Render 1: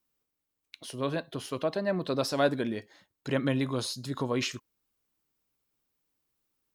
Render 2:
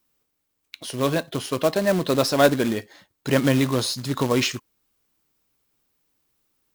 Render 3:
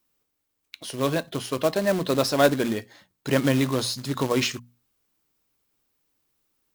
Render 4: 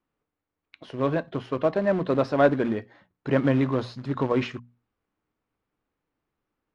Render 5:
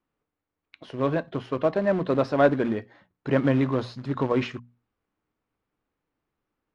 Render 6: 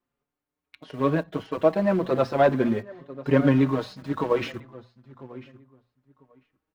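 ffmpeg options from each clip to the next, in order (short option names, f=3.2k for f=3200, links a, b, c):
-af "acrusher=bits=3:mode=log:mix=0:aa=0.000001,volume=8.5dB"
-af "bandreject=f=60:t=h:w=6,bandreject=f=120:t=h:w=6,bandreject=f=180:t=h:w=6,bandreject=f=240:t=h:w=6,volume=-2dB"
-af "lowpass=1.8k"
-af anull
-filter_complex "[0:a]asplit=2[a][b];[b]aeval=exprs='val(0)*gte(abs(val(0)),0.0141)':c=same,volume=-9.5dB[c];[a][c]amix=inputs=2:normalize=0,asplit=2[d][e];[e]adelay=996,lowpass=f=3.2k:p=1,volume=-18.5dB,asplit=2[f][g];[g]adelay=996,lowpass=f=3.2k:p=1,volume=0.16[h];[d][f][h]amix=inputs=3:normalize=0,asplit=2[i][j];[j]adelay=5.3,afreqshift=0.37[k];[i][k]amix=inputs=2:normalize=1,volume=1.5dB"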